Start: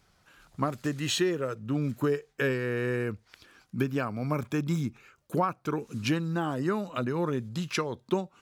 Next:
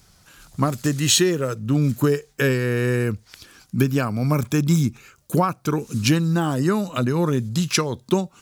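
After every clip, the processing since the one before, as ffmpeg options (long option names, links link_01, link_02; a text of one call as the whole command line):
ffmpeg -i in.wav -af "bass=frequency=250:gain=6,treble=frequency=4000:gain=11,volume=6dB" out.wav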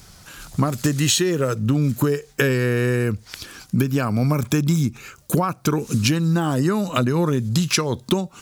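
ffmpeg -i in.wav -af "acompressor=threshold=-25dB:ratio=6,volume=8.5dB" out.wav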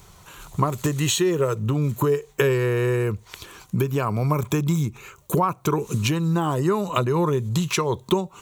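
ffmpeg -i in.wav -af "equalizer=frequency=250:width_type=o:width=0.33:gain=-11,equalizer=frequency=400:width_type=o:width=0.33:gain=6,equalizer=frequency=1000:width_type=o:width=0.33:gain=9,equalizer=frequency=1600:width_type=o:width=0.33:gain=-5,equalizer=frequency=5000:width_type=o:width=0.33:gain=-11,equalizer=frequency=10000:width_type=o:width=0.33:gain=-5,volume=-2dB" out.wav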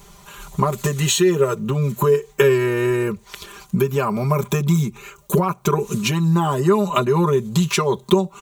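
ffmpeg -i in.wav -af "aecho=1:1:5:0.93,volume=1dB" out.wav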